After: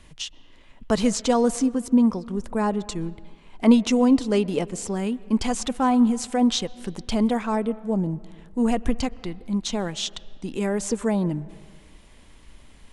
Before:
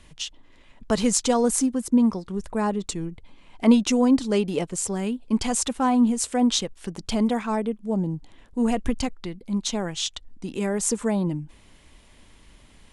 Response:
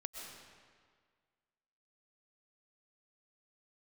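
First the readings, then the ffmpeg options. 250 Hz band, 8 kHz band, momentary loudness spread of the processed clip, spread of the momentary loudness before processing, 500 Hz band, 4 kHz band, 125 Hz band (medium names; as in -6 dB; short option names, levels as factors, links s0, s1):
+1.0 dB, -5.5 dB, 14 LU, 14 LU, +1.0 dB, -1.0 dB, +1.0 dB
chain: -filter_complex "[0:a]asplit=2[s0][s1];[s1]asubboost=boost=3.5:cutoff=79[s2];[1:a]atrim=start_sample=2205,lowpass=2600[s3];[s2][s3]afir=irnorm=-1:irlink=0,volume=0.237[s4];[s0][s4]amix=inputs=2:normalize=0,acrossover=split=6100[s5][s6];[s6]acompressor=threshold=0.0158:ratio=4:attack=1:release=60[s7];[s5][s7]amix=inputs=2:normalize=0"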